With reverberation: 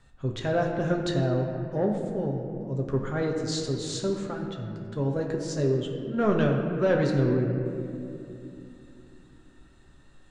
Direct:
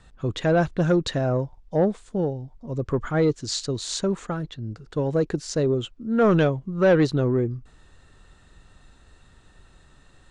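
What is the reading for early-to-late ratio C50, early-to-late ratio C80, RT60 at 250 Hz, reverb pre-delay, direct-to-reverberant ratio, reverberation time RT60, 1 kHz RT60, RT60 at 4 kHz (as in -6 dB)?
4.0 dB, 5.0 dB, 4.4 s, 5 ms, 0.5 dB, 2.7 s, 2.3 s, 1.5 s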